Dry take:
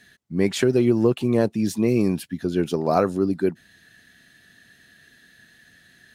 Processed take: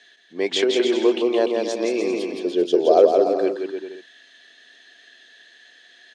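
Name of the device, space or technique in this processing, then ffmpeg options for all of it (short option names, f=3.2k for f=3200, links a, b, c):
phone speaker on a table: -filter_complex "[0:a]asettb=1/sr,asplit=3[a][b][c];[a]atrim=end=2.154[d];[b]atrim=start=2.15:end=3.14,asetpts=PTS-STARTPTS,afade=t=in:d=0.004:c=qsin,afade=t=out:st=0.986:d=0.004:c=qsin,equalizer=f=125:t=o:w=1:g=6,equalizer=f=500:t=o:w=1:g=9,equalizer=f=1k:t=o:w=1:g=-10,equalizer=f=2k:t=o:w=1:g=-7[e];[c]atrim=start=3.136[f];[d][e]acrossfade=d=0.004:c1=hsin:c2=qsin[g];[g][f]acrossfade=d=0.004:c1=qsin:c2=hsin,highpass=f=360:w=0.5412,highpass=f=360:w=1.3066,equalizer=f=690:t=q:w=4:g=3,equalizer=f=1.4k:t=q:w=4:g=-5,equalizer=f=3.3k:t=q:w=4:g=8,lowpass=f=6.8k:w=0.5412,lowpass=f=6.8k:w=1.3066,aecho=1:1:170|297.5|393.1|464.8|518.6:0.631|0.398|0.251|0.158|0.1,volume=1.5dB"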